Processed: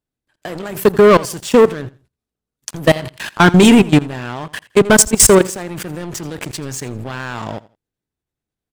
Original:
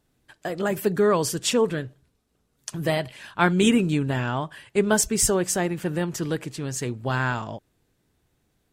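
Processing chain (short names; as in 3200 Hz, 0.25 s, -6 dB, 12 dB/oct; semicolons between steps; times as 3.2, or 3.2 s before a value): level quantiser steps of 22 dB; sample leveller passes 3; feedback echo 83 ms, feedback 25%, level -20 dB; gain +8 dB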